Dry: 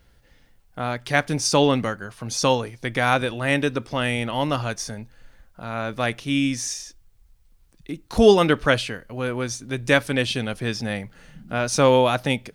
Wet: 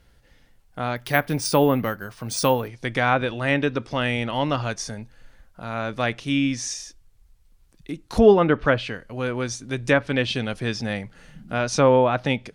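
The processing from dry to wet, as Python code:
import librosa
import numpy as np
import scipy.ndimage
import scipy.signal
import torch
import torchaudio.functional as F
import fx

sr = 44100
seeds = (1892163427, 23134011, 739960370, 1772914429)

y = fx.env_lowpass_down(x, sr, base_hz=1700.0, full_db=-13.5)
y = fx.resample_bad(y, sr, factor=3, down='none', up='hold', at=(0.96, 2.68))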